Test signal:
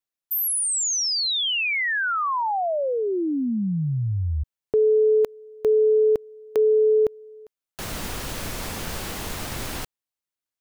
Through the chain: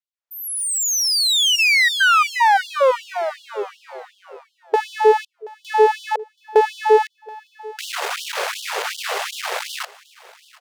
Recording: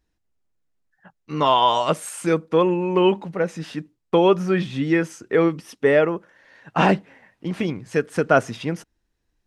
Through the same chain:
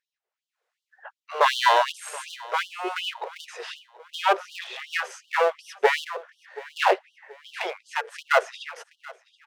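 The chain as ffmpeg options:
ffmpeg -i in.wav -filter_complex "[0:a]aemphasis=mode=reproduction:type=75kf,dynaudnorm=framelen=110:gausssize=9:maxgain=15dB,aeval=exprs='clip(val(0),-1,0.0668)':channel_layout=same,asplit=2[link_01][link_02];[link_02]aecho=0:1:728|1456|2184:0.0944|0.033|0.0116[link_03];[link_01][link_03]amix=inputs=2:normalize=0,afftfilt=real='re*gte(b*sr/1024,370*pow(2900/370,0.5+0.5*sin(2*PI*2.7*pts/sr)))':imag='im*gte(b*sr/1024,370*pow(2900/370,0.5+0.5*sin(2*PI*2.7*pts/sr)))':win_size=1024:overlap=0.75,volume=1dB" out.wav

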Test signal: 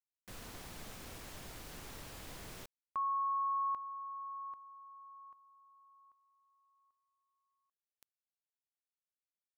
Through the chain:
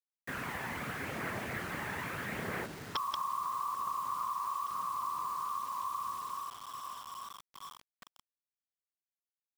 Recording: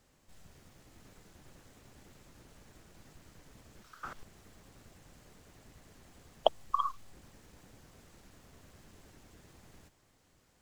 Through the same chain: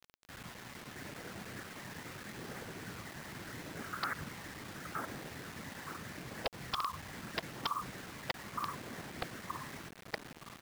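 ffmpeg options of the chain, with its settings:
ffmpeg -i in.wav -filter_complex "[0:a]lowpass=frequency=1900:width_type=q:width=2.4,asplit=2[link_01][link_02];[link_02]adelay=919,lowpass=frequency=960:poles=1,volume=-5.5dB,asplit=2[link_03][link_04];[link_04]adelay=919,lowpass=frequency=960:poles=1,volume=0.55,asplit=2[link_05][link_06];[link_06]adelay=919,lowpass=frequency=960:poles=1,volume=0.55,asplit=2[link_07][link_08];[link_08]adelay=919,lowpass=frequency=960:poles=1,volume=0.55,asplit=2[link_09][link_10];[link_10]adelay=919,lowpass=frequency=960:poles=1,volume=0.55,asplit=2[link_11][link_12];[link_12]adelay=919,lowpass=frequency=960:poles=1,volume=0.55,asplit=2[link_13][link_14];[link_14]adelay=919,lowpass=frequency=960:poles=1,volume=0.55[link_15];[link_01][link_03][link_05][link_07][link_09][link_11][link_13][link_15]amix=inputs=8:normalize=0,afftfilt=real='hypot(re,im)*cos(2*PI*random(0))':imag='hypot(re,im)*sin(2*PI*random(1))':win_size=512:overlap=0.75,asplit=2[link_16][link_17];[link_17]volume=22.5dB,asoftclip=hard,volume=-22.5dB,volume=-4dB[link_18];[link_16][link_18]amix=inputs=2:normalize=0,aphaser=in_gain=1:out_gain=1:delay=1.2:decay=0.29:speed=0.78:type=triangular,highpass=140,acompressor=threshold=-48dB:ratio=12:attack=24:release=82:knee=1:detection=peak,aresample=11025,aeval=exprs='(mod(75*val(0)+1,2)-1)/75':channel_layout=same,aresample=44100,acrusher=bits=9:mix=0:aa=0.000001,volume=12dB" out.wav

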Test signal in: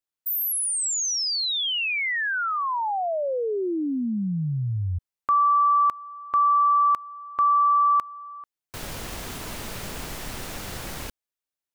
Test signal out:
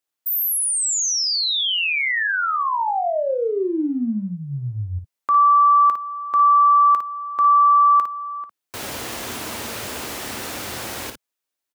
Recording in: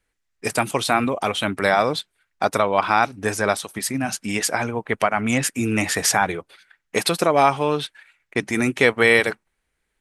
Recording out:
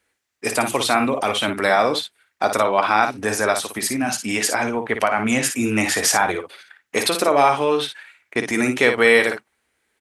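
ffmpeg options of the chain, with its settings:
ffmpeg -i in.wav -filter_complex "[0:a]highpass=120,equalizer=frequency=160:width=4.4:gain=-13.5,asplit=2[link_01][link_02];[link_02]acompressor=threshold=-29dB:ratio=6:attack=0.27:release=25:knee=6:detection=rms,volume=2dB[link_03];[link_01][link_03]amix=inputs=2:normalize=0,aecho=1:1:13|56:0.178|0.422,volume=-1dB" out.wav

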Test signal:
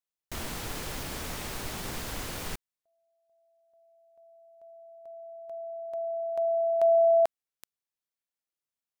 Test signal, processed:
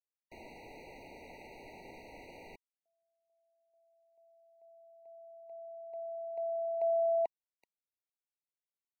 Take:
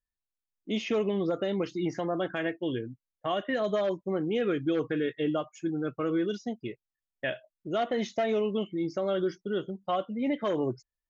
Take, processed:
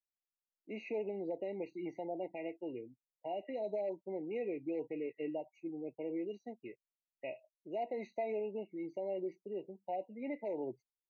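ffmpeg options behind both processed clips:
ffmpeg -i in.wav -filter_complex "[0:a]acrossover=split=270 3300:gain=0.2 1 0.1[link_01][link_02][link_03];[link_01][link_02][link_03]amix=inputs=3:normalize=0,afftfilt=real='re*eq(mod(floor(b*sr/1024/950),2),0)':imag='im*eq(mod(floor(b*sr/1024/950),2),0)':win_size=1024:overlap=0.75,volume=-8.5dB" out.wav

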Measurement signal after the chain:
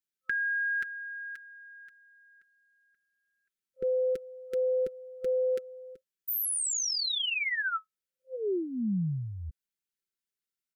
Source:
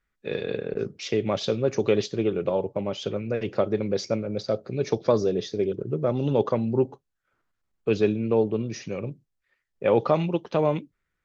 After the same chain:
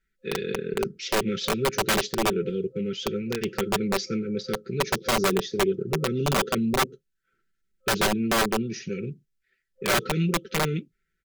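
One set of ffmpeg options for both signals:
ffmpeg -i in.wav -af "afftfilt=real='re*(1-between(b*sr/4096,520,1300))':imag='im*(1-between(b*sr/4096,520,1300))':win_size=4096:overlap=0.75,aeval=exprs='(mod(7.5*val(0)+1,2)-1)/7.5':channel_layout=same,aecho=1:1:5.2:0.55" out.wav

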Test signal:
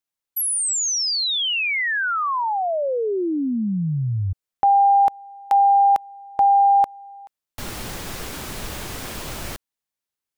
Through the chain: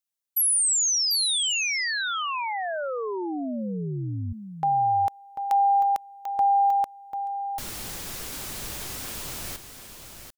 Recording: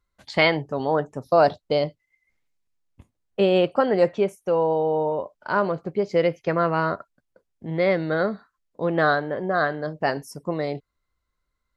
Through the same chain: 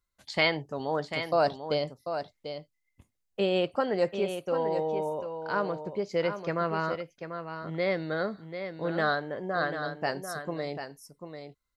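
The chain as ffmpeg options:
ffmpeg -i in.wav -af "highshelf=frequency=3600:gain=9.5,aecho=1:1:742:0.376,volume=-8dB" out.wav

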